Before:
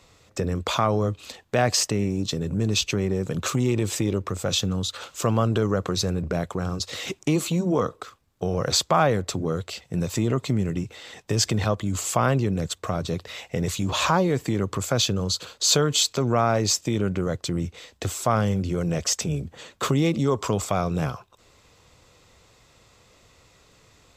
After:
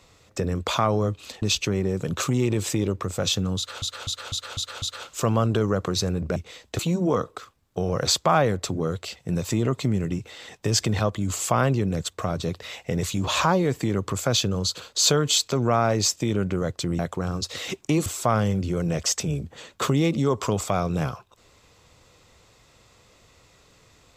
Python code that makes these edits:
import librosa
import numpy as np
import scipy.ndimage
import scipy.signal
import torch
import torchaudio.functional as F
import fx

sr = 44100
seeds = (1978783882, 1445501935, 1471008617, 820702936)

y = fx.edit(x, sr, fx.cut(start_s=1.42, length_s=1.26),
    fx.repeat(start_s=4.83, length_s=0.25, count=6),
    fx.swap(start_s=6.37, length_s=1.07, other_s=17.64, other_length_s=0.43), tone=tone)